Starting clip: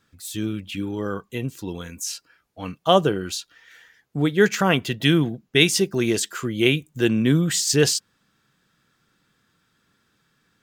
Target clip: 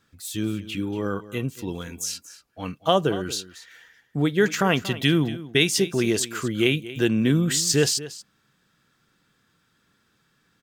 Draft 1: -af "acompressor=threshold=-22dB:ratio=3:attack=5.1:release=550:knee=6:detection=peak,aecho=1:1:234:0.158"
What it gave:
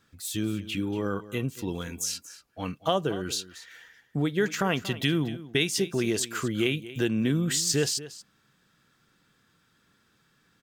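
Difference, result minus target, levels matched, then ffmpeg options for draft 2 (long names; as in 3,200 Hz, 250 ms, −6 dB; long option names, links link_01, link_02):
downward compressor: peak gain reduction +6.5 dB
-af "acompressor=threshold=-12.5dB:ratio=3:attack=5.1:release=550:knee=6:detection=peak,aecho=1:1:234:0.158"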